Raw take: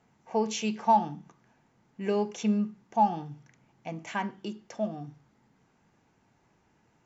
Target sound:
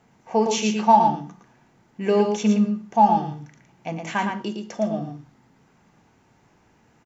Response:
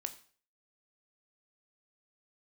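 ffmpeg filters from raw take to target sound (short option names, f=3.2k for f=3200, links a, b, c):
-filter_complex "[0:a]aecho=1:1:113:0.531,asplit=2[a][b];[1:a]atrim=start_sample=2205[c];[b][c]afir=irnorm=-1:irlink=0,volume=6.5dB[d];[a][d]amix=inputs=2:normalize=0,volume=-1.5dB"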